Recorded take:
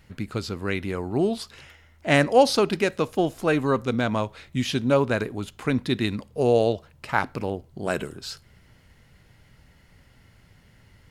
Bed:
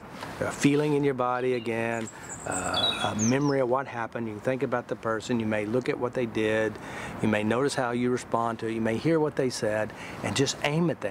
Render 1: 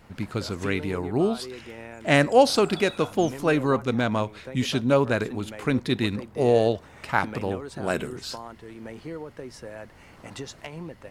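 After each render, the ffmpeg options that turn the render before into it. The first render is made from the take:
ffmpeg -i in.wav -i bed.wav -filter_complex "[1:a]volume=-12.5dB[link_01];[0:a][link_01]amix=inputs=2:normalize=0" out.wav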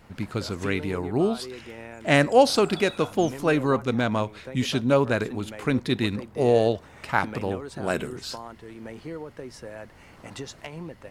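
ffmpeg -i in.wav -af anull out.wav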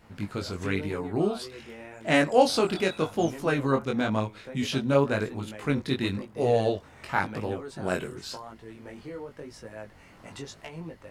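ffmpeg -i in.wav -af "flanger=delay=18:depth=4.4:speed=0.93" out.wav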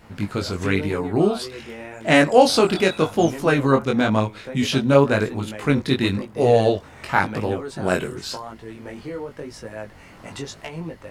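ffmpeg -i in.wav -af "volume=7.5dB,alimiter=limit=-2dB:level=0:latency=1" out.wav

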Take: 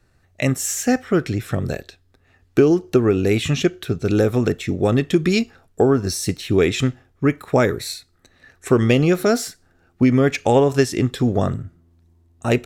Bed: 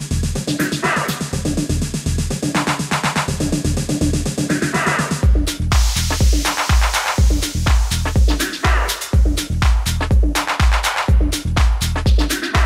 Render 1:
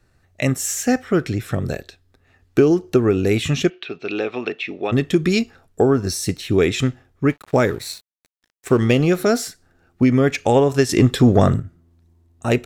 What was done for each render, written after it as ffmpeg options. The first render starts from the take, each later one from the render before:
ffmpeg -i in.wav -filter_complex "[0:a]asplit=3[link_01][link_02][link_03];[link_01]afade=type=out:start_time=3.69:duration=0.02[link_04];[link_02]highpass=430,equalizer=frequency=520:width_type=q:width=4:gain=-6,equalizer=frequency=1500:width_type=q:width=4:gain=-4,equalizer=frequency=2600:width_type=q:width=4:gain=10,lowpass=frequency=4300:width=0.5412,lowpass=frequency=4300:width=1.3066,afade=type=in:start_time=3.69:duration=0.02,afade=type=out:start_time=4.91:duration=0.02[link_05];[link_03]afade=type=in:start_time=4.91:duration=0.02[link_06];[link_04][link_05][link_06]amix=inputs=3:normalize=0,asettb=1/sr,asplit=3[link_07][link_08][link_09];[link_07]atrim=end=7.294[link_10];[link_08]atrim=start=7.29:end=9.16,asetpts=PTS-STARTPTS,afade=type=in:duration=0.004:curve=qsin,afade=type=out:start_time=1.866:duration=0.004:curve=qsin,aeval=exprs='sgn(val(0))*max(abs(val(0))-0.00891,0)':channel_layout=same[link_11];[link_09]atrim=start=9.156[link_12];[link_10][link_11]acrossfade=duration=0.004:curve1=hsin:curve2=qsin[link_13];[link_13][link_12]acrossfade=duration=0.004:curve1=qsin:curve2=hsin,asettb=1/sr,asplit=3[link_14][link_15][link_16];[link_14]atrim=end=10.894[link_17];[link_15]atrim=start=10.89:end=11.6,asetpts=PTS-STARTPTS,afade=type=in:duration=0.004:curve=qsin,afade=type=out:start_time=0.706:duration=0.004:curve=qsin,acontrast=70[link_18];[link_16]atrim=start=11.596[link_19];[link_17][link_18]acrossfade=duration=0.004:curve1=hsin:curve2=qsin[link_20];[link_20][link_19]acrossfade=duration=0.004:curve1=qsin:curve2=hsin" out.wav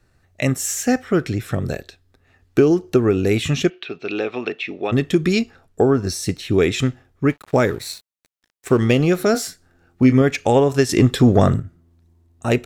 ffmpeg -i in.wav -filter_complex "[0:a]asettb=1/sr,asplit=3[link_01][link_02][link_03];[link_01]atrim=end=5.324[link_04];[link_02]atrim=start=5.32:end=6.54,asetpts=PTS-STARTPTS,afade=type=in:duration=0.004:curve=qsin,afade=type=out:start_time=1.216:duration=0.004:curve=qsin,highshelf=frequency=8500:gain=-5[link_05];[link_03]atrim=start=6.536[link_06];[link_04][link_05]acrossfade=duration=0.004:curve1=hsin:curve2=qsin[link_07];[link_07][link_06]acrossfade=duration=0.004:curve1=qsin:curve2=hsin,asettb=1/sr,asplit=3[link_08][link_09][link_10];[link_08]atrim=end=9.324[link_11];[link_09]atrim=start=9.32:end=10.22,asetpts=PTS-STARTPTS,afade=type=in:duration=0.004:curve=qsin,afade=type=out:start_time=0.896:duration=0.004:curve=qsin,asplit=2[link_12][link_13];[link_13]adelay=23,volume=-8dB[link_14];[link_12][link_14]amix=inputs=2:normalize=0,atrim=end_sample=39690[link_15];[link_10]atrim=start=10.216[link_16];[link_11][link_15]acrossfade=duration=0.004:curve1=hsin:curve2=qsin[link_17];[link_17][link_16]acrossfade=duration=0.004:curve1=qsin:curve2=hsin" out.wav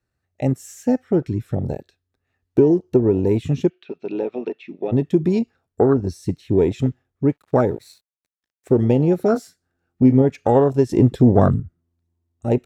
ffmpeg -i in.wav -af "highpass=40,afwtdn=0.1" out.wav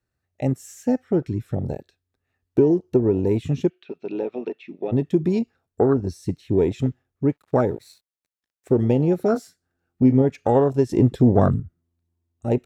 ffmpeg -i in.wav -af "volume=-2.5dB" out.wav

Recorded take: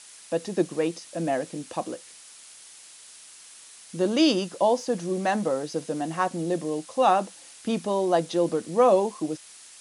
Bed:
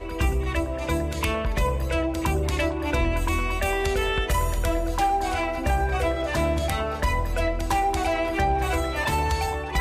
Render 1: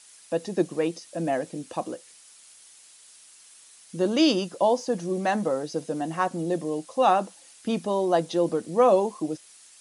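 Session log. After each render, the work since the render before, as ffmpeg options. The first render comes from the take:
ffmpeg -i in.wav -af "afftdn=noise_reduction=6:noise_floor=-48" out.wav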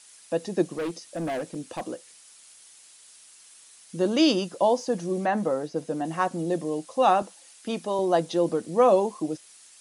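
ffmpeg -i in.wav -filter_complex "[0:a]asettb=1/sr,asplit=3[link_01][link_02][link_03];[link_01]atrim=end=0.754[link_04];[link_02]atrim=start=0.75:end=1.87,asetpts=PTS-STARTPTS,afade=type=in:duration=0.004:curve=qsin,afade=type=out:start_time=1.116:duration=0.004:curve=qsin,volume=26.5dB,asoftclip=hard,volume=-26.5dB[link_05];[link_03]atrim=start=1.866[link_06];[link_04][link_05]acrossfade=duration=0.004:curve1=hsin:curve2=qsin[link_07];[link_07][link_06]acrossfade=duration=0.004:curve1=qsin:curve2=hsin,asettb=1/sr,asplit=3[link_08][link_09][link_10];[link_08]atrim=end=5.244[link_11];[link_09]atrim=start=5.24:end=6.05,asetpts=PTS-STARTPTS,afade=type=in:duration=0.004:curve=qsin,afade=type=out:start_time=0.806:duration=0.004:curve=qsin,acrossover=split=2500[link_12][link_13];[link_13]acompressor=threshold=-49dB:ratio=4:attack=1:release=60[link_14];[link_12][link_14]amix=inputs=2:normalize=0[link_15];[link_10]atrim=start=6.046[link_16];[link_11][link_15]acrossfade=duration=0.004:curve1=hsin:curve2=qsin[link_17];[link_17][link_16]acrossfade=duration=0.004:curve1=qsin:curve2=hsin,asettb=1/sr,asplit=3[link_18][link_19][link_20];[link_18]atrim=end=7.224[link_21];[link_19]atrim=start=7.22:end=7.99,asetpts=PTS-STARTPTS,afade=type=in:duration=0.004:curve=qsin,afade=type=out:start_time=0.766:duration=0.004:curve=qsin,highpass=frequency=320:poles=1[link_22];[link_20]atrim=start=7.986[link_23];[link_21][link_22]acrossfade=duration=0.004:curve1=hsin:curve2=qsin[link_24];[link_24][link_23]acrossfade=duration=0.004:curve1=qsin:curve2=hsin" out.wav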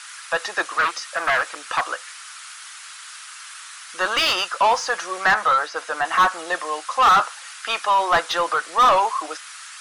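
ffmpeg -i in.wav -filter_complex "[0:a]highpass=frequency=1300:width_type=q:width=3.3,asplit=2[link_01][link_02];[link_02]highpass=frequency=720:poles=1,volume=26dB,asoftclip=type=tanh:threshold=-6.5dB[link_03];[link_01][link_03]amix=inputs=2:normalize=0,lowpass=frequency=2300:poles=1,volume=-6dB" out.wav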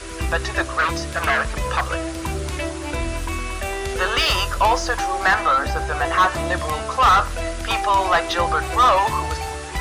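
ffmpeg -i in.wav -i bed.wav -filter_complex "[1:a]volume=-2dB[link_01];[0:a][link_01]amix=inputs=2:normalize=0" out.wav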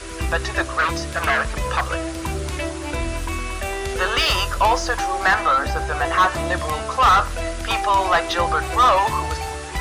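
ffmpeg -i in.wav -af anull out.wav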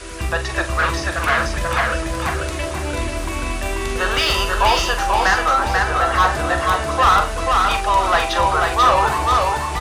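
ffmpeg -i in.wav -filter_complex "[0:a]asplit=2[link_01][link_02];[link_02]adelay=44,volume=-9dB[link_03];[link_01][link_03]amix=inputs=2:normalize=0,aecho=1:1:488|976|1464|1952:0.708|0.241|0.0818|0.0278" out.wav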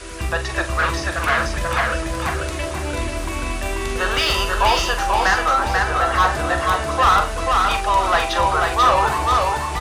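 ffmpeg -i in.wav -af "volume=-1dB" out.wav

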